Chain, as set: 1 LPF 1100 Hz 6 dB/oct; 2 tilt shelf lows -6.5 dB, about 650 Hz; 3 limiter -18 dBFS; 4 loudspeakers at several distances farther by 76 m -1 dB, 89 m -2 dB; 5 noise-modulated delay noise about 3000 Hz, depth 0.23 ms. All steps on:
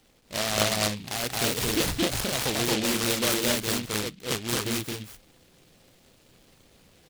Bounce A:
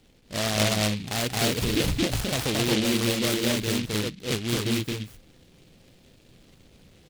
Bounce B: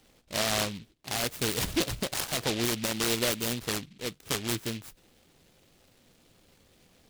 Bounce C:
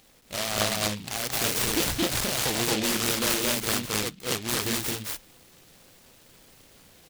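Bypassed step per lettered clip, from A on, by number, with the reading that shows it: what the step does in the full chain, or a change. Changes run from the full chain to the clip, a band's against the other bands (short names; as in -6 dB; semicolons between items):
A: 2, 125 Hz band +5.5 dB; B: 4, crest factor change -4.0 dB; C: 1, 8 kHz band +2.0 dB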